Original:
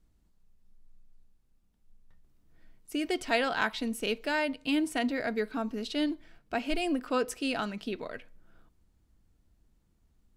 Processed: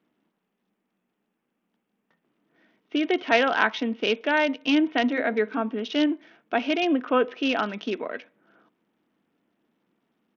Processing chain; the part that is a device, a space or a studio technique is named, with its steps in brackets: 5.08–5.62 de-hum 67.41 Hz, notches 15; Bluetooth headset (HPF 220 Hz 24 dB/oct; downsampling 8000 Hz; gain +7.5 dB; SBC 64 kbps 48000 Hz)

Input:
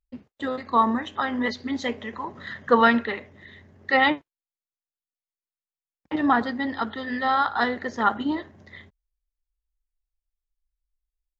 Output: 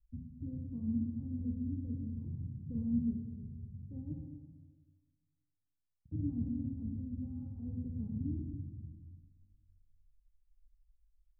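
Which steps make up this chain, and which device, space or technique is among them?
club heard from the street (limiter -15.5 dBFS, peak gain reduction 11 dB; LPF 130 Hz 24 dB/oct; reverb RT60 1.5 s, pre-delay 26 ms, DRR 0.5 dB); gain +11.5 dB

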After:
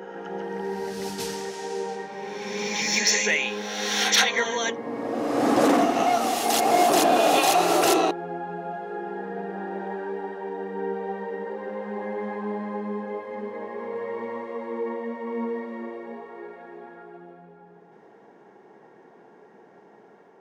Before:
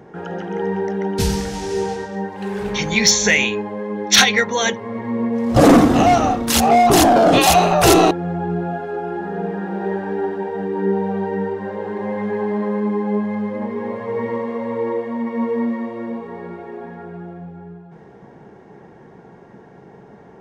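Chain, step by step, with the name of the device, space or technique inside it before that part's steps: ghost voice (reverse; reverb RT60 2.1 s, pre-delay 0.11 s, DRR 2 dB; reverse; HPF 330 Hz 12 dB/oct); gain -8 dB

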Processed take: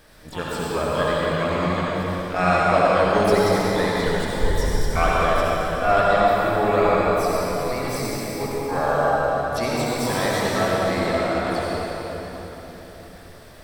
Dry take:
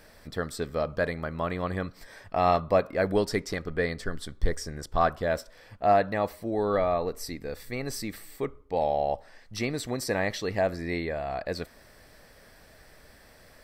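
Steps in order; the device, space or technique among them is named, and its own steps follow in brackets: shimmer-style reverb (harmoniser +12 st -6 dB; reverb RT60 4.1 s, pre-delay 60 ms, DRR -6 dB)

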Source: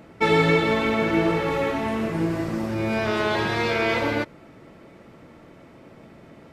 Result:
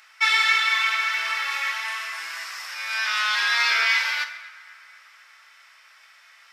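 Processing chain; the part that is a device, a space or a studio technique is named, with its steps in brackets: 3.42–3.86 bell 360 Hz +14 dB 1.2 oct; headphones lying on a table (HPF 1400 Hz 24 dB/oct; bell 5300 Hz +9 dB 0.28 oct); narrowing echo 0.248 s, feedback 64%, band-pass 1400 Hz, level -20 dB; two-slope reverb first 0.69 s, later 2 s, DRR 7 dB; gain +6 dB

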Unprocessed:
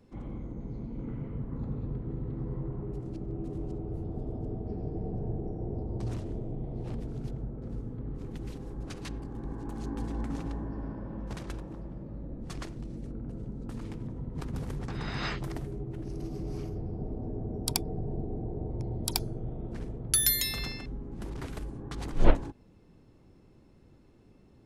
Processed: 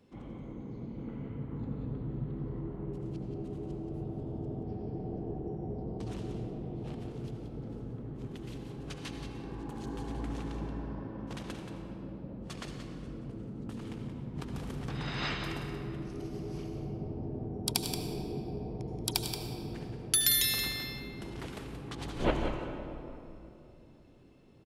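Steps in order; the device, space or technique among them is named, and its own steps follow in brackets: PA in a hall (HPF 120 Hz 6 dB/oct; bell 3100 Hz +5.5 dB 0.69 oct; echo 0.178 s -8.5 dB; reverb RT60 2.9 s, pre-delay 68 ms, DRR 4.5 dB); gain -2 dB

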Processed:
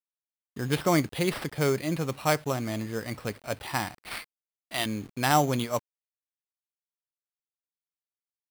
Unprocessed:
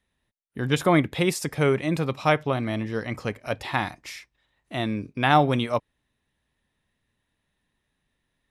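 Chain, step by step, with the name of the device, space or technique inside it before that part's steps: 4.11–4.86 tilt shelf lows -9 dB, about 640 Hz; early 8-bit sampler (sample-rate reducer 6700 Hz, jitter 0%; bit-crush 8-bit); gain -4 dB

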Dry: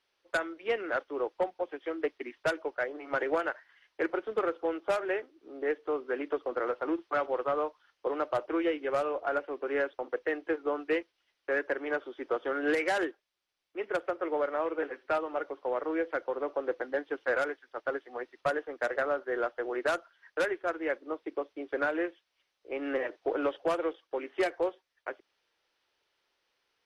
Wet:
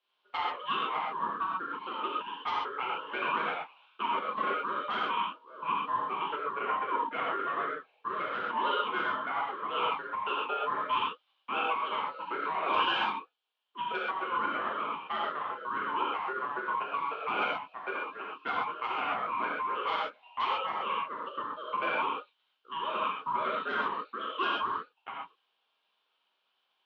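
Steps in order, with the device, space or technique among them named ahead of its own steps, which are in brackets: 6.25–8.09 bell 4000 Hz -6 dB 0.95 oct; voice changer toy (ring modulator with a swept carrier 740 Hz, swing 25%, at 3.8 Hz; speaker cabinet 460–3800 Hz, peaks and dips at 1000 Hz +5 dB, 2000 Hz -10 dB, 3100 Hz +9 dB); non-linear reverb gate 0.16 s flat, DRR -5 dB; gain -2.5 dB

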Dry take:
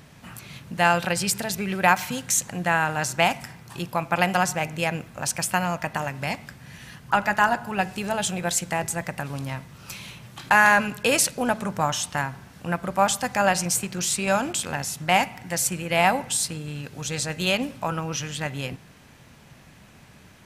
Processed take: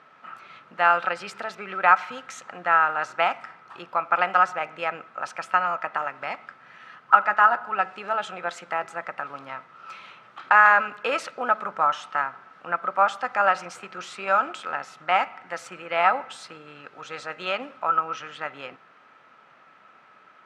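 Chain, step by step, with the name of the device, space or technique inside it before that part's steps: tin-can telephone (BPF 500–2300 Hz; small resonant body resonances 1300 Hz, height 17 dB, ringing for 35 ms); gain -1 dB

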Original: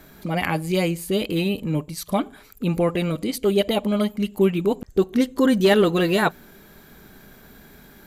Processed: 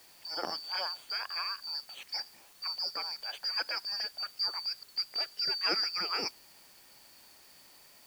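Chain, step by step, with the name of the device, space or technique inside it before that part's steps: split-band scrambled radio (four-band scrambler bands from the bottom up 2341; BPF 400–3000 Hz; white noise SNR 22 dB); gain -6.5 dB

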